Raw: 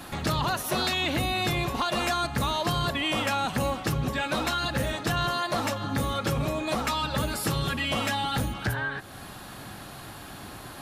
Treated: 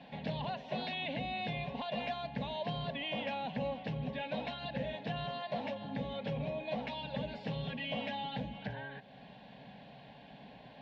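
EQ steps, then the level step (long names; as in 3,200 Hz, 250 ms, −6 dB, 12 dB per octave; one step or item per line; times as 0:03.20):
high-pass filter 76 Hz
inverse Chebyshev low-pass filter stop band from 9,500 Hz, stop band 60 dB
phaser with its sweep stopped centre 340 Hz, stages 6
−6.5 dB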